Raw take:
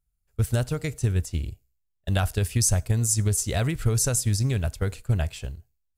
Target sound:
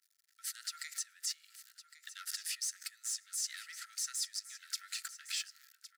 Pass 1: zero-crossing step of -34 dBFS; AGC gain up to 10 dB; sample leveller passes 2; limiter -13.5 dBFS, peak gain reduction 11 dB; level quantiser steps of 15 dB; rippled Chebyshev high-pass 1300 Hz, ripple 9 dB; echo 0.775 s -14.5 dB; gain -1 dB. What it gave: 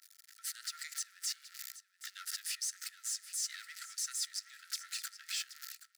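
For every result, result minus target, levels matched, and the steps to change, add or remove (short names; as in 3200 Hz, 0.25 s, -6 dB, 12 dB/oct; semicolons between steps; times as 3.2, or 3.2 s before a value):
echo 0.335 s early; zero-crossing step: distortion +7 dB
change: echo 1.11 s -14.5 dB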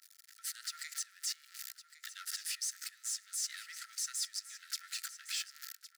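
zero-crossing step: distortion +7 dB
change: zero-crossing step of -41.5 dBFS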